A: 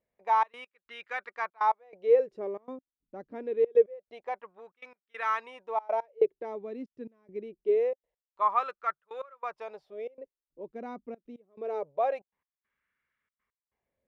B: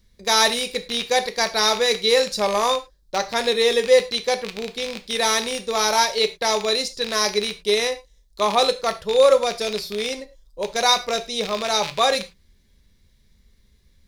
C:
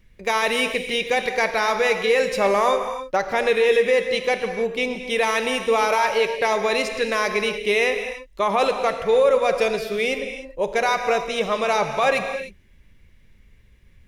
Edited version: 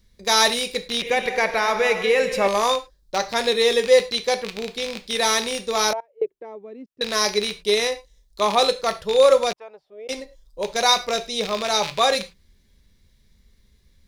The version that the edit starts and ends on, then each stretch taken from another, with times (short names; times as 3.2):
B
1.02–2.48 from C
5.93–7.01 from A
9.53–10.09 from A